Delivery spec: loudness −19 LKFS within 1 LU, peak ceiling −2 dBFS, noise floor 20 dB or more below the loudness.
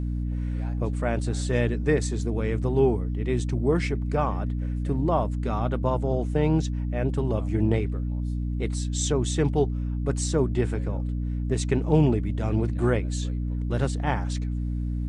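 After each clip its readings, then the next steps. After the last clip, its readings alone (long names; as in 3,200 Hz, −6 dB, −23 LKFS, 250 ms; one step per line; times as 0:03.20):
mains hum 60 Hz; hum harmonics up to 300 Hz; level of the hum −25 dBFS; integrated loudness −26.5 LKFS; sample peak −8.0 dBFS; target loudness −19.0 LKFS
→ hum removal 60 Hz, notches 5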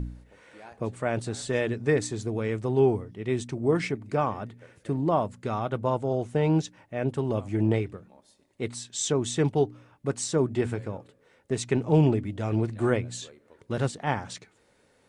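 mains hum none found; integrated loudness −28.0 LKFS; sample peak −9.5 dBFS; target loudness −19.0 LKFS
→ level +9 dB
brickwall limiter −2 dBFS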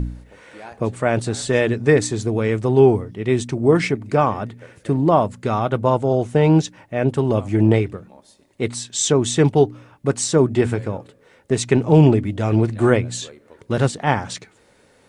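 integrated loudness −19.0 LKFS; sample peak −2.0 dBFS; background noise floor −55 dBFS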